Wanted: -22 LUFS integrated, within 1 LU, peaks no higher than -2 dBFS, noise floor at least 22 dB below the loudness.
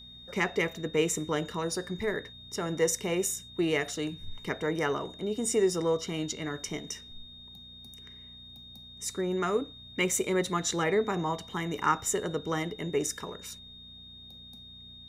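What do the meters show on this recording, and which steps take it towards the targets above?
hum 60 Hz; harmonics up to 240 Hz; hum level -55 dBFS; steady tone 3700 Hz; tone level -47 dBFS; loudness -31.0 LUFS; peak -12.0 dBFS; loudness target -22.0 LUFS
-> de-hum 60 Hz, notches 4; notch 3700 Hz, Q 30; gain +9 dB

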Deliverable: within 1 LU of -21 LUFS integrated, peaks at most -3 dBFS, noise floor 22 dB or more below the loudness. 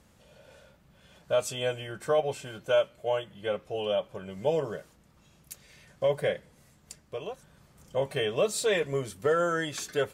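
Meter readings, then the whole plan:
loudness -30.0 LUFS; peak -14.5 dBFS; loudness target -21.0 LUFS
-> gain +9 dB

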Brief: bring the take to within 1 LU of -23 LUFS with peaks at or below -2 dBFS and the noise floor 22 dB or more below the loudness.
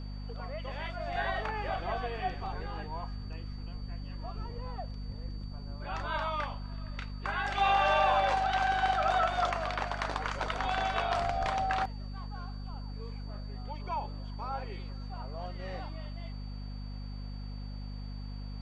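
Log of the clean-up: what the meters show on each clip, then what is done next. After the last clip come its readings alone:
hum 50 Hz; harmonics up to 250 Hz; hum level -37 dBFS; steady tone 4600 Hz; tone level -55 dBFS; loudness -34.0 LUFS; peak -16.5 dBFS; loudness target -23.0 LUFS
-> notches 50/100/150/200/250 Hz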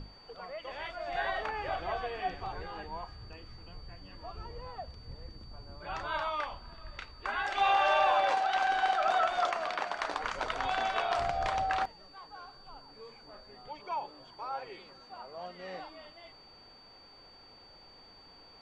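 hum none; steady tone 4600 Hz; tone level -55 dBFS
-> notch 4600 Hz, Q 30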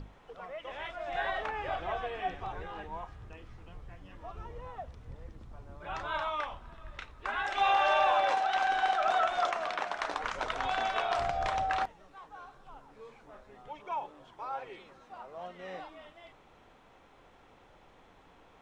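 steady tone none; loudness -32.5 LUFS; peak -17.0 dBFS; loudness target -23.0 LUFS
-> gain +9.5 dB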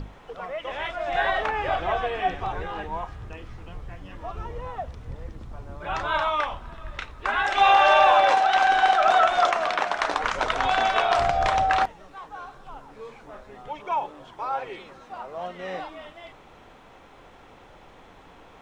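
loudness -23.0 LUFS; peak -7.5 dBFS; noise floor -50 dBFS

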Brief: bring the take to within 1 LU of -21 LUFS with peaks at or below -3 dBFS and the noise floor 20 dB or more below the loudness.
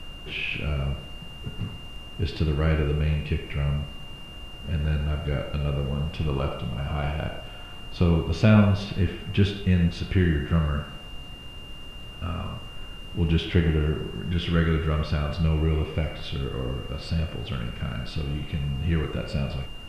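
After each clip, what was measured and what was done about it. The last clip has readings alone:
steady tone 2800 Hz; tone level -43 dBFS; noise floor -41 dBFS; noise floor target -47 dBFS; loudness -26.5 LUFS; peak -4.5 dBFS; loudness target -21.0 LUFS
-> notch 2800 Hz, Q 30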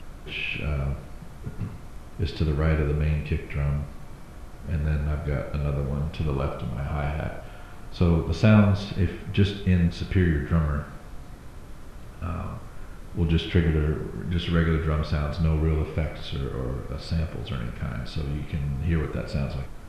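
steady tone none; noise floor -42 dBFS; noise floor target -47 dBFS
-> noise print and reduce 6 dB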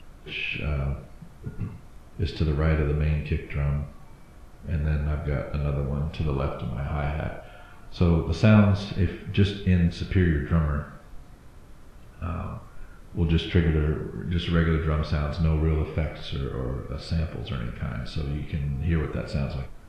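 noise floor -48 dBFS; loudness -26.5 LUFS; peak -5.0 dBFS; loudness target -21.0 LUFS
-> gain +5.5 dB; limiter -3 dBFS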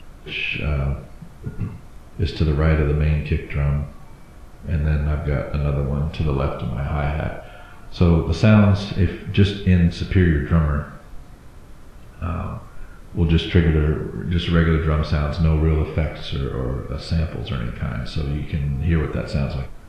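loudness -21.5 LUFS; peak -3.0 dBFS; noise floor -42 dBFS

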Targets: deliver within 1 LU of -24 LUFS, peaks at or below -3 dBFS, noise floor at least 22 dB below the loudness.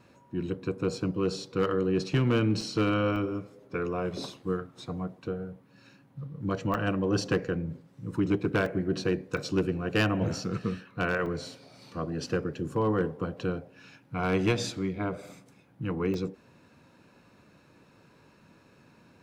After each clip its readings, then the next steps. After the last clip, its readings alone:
clipped 0.2%; flat tops at -18.0 dBFS; dropouts 7; longest dropout 3.1 ms; loudness -30.5 LUFS; peak -18.0 dBFS; loudness target -24.0 LUFS
-> clip repair -18 dBFS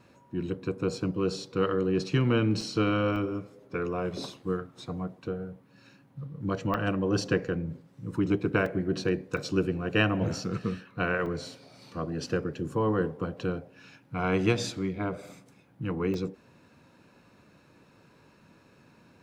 clipped 0.0%; dropouts 7; longest dropout 3.1 ms
-> interpolate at 2.61/3.16/6.74/8.66/9.37/11.26/16.14, 3.1 ms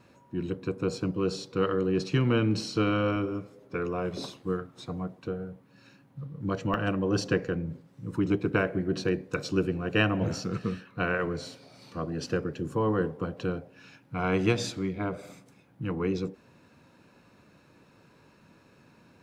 dropouts 0; loudness -30.0 LUFS; peak -10.0 dBFS; loudness target -24.0 LUFS
-> gain +6 dB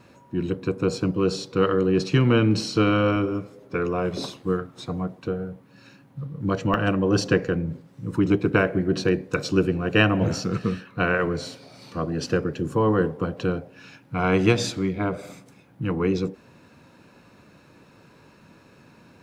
loudness -24.0 LUFS; peak -4.0 dBFS; noise floor -54 dBFS

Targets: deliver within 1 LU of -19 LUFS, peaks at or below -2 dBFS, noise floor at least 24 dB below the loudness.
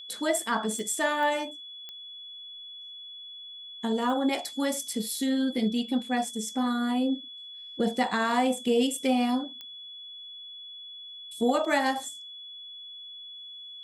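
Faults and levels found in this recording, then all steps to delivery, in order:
clicks 5; steady tone 3400 Hz; tone level -41 dBFS; loudness -28.0 LUFS; peak -12.5 dBFS; loudness target -19.0 LUFS
-> de-click; notch 3400 Hz, Q 30; gain +9 dB

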